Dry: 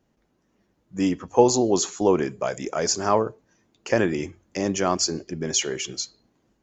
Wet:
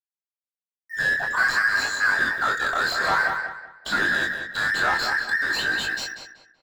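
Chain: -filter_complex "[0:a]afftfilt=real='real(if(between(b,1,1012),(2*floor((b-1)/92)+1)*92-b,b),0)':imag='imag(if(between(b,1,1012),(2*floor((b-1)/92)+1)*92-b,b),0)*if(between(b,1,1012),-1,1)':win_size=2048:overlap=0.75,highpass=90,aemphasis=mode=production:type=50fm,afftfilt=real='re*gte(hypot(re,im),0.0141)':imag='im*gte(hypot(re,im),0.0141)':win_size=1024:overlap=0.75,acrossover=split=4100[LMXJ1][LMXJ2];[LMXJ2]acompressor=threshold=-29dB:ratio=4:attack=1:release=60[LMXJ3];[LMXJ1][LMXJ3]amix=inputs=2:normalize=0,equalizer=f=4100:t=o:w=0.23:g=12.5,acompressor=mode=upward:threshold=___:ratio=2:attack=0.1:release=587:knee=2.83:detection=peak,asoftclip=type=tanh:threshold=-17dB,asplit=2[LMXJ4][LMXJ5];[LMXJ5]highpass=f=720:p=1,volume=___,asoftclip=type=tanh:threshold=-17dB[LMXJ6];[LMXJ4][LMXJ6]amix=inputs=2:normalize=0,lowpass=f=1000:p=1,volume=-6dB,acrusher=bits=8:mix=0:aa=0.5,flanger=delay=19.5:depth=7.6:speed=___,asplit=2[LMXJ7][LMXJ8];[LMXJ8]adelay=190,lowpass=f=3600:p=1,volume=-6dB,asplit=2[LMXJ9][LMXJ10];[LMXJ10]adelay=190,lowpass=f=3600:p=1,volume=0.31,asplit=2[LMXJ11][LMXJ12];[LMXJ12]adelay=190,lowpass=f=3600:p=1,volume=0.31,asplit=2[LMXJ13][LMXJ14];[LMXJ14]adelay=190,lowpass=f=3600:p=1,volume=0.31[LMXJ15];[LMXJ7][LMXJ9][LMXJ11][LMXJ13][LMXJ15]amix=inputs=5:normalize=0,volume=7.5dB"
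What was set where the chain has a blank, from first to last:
-41dB, 20dB, 0.51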